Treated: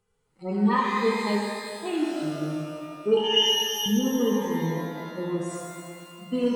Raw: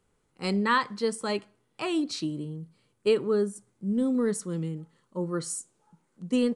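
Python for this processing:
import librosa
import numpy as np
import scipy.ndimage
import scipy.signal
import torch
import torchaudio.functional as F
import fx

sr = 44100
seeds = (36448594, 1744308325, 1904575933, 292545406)

y = fx.hpss_only(x, sr, part='harmonic')
y = fx.freq_invert(y, sr, carrier_hz=3300, at=(3.17, 3.86))
y = fx.rev_shimmer(y, sr, seeds[0], rt60_s=2.1, semitones=12, shimmer_db=-8, drr_db=-3.5)
y = y * librosa.db_to_amplitude(-2.0)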